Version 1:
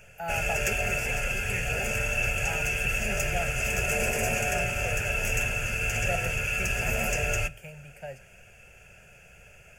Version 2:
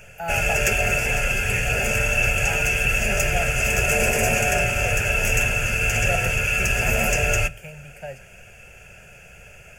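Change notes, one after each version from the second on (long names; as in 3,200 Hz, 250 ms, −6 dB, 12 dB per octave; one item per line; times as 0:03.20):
speech +4.5 dB
background +7.0 dB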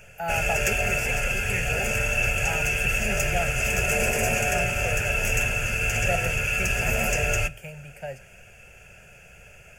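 background −3.5 dB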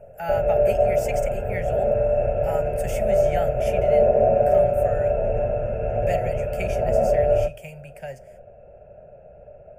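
background: add low-pass with resonance 610 Hz, resonance Q 6.5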